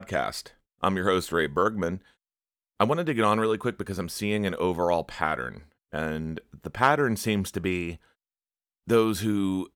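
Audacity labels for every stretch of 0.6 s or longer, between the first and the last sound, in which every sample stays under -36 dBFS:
1.970000	2.800000	silence
7.950000	8.880000	silence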